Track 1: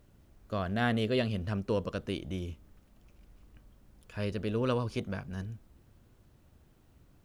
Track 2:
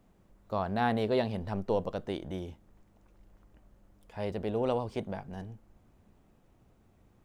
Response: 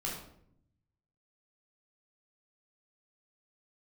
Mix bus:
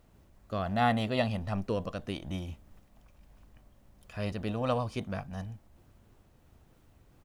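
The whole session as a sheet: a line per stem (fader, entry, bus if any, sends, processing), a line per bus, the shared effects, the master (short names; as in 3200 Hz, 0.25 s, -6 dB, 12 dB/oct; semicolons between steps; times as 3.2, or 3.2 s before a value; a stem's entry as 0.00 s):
+2.0 dB, 0.00 s, no send, noise-modulated level, depth 50%
+1.0 dB, 1.7 ms, no send, bell 140 Hz -9.5 dB 2.3 oct; attack slew limiter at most 130 dB/s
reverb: off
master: dry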